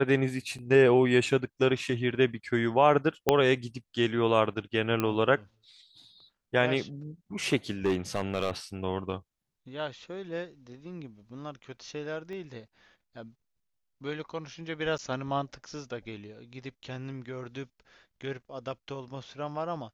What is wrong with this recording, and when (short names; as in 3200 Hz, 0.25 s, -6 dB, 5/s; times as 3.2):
0.58–0.59 gap 6.4 ms
3.29 pop -7 dBFS
5 pop -14 dBFS
7.85–8.51 clipped -21.5 dBFS
12.33 pop -32 dBFS
14.98–14.99 gap 9.6 ms